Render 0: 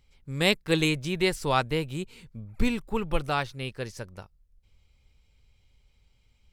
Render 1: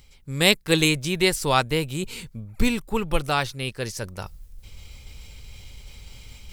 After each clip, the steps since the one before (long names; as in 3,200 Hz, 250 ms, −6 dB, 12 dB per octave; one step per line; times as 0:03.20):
high-shelf EQ 4,800 Hz +9.5 dB
reversed playback
upward compression, threshold −29 dBFS
reversed playback
level +3.5 dB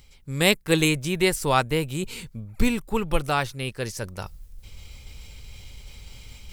dynamic equaliser 4,300 Hz, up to −5 dB, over −38 dBFS, Q 1.1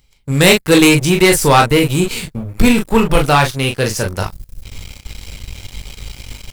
on a send: ambience of single reflections 22 ms −7.5 dB, 41 ms −7 dB
on the sum: leveller curve on the samples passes 3
level +1.5 dB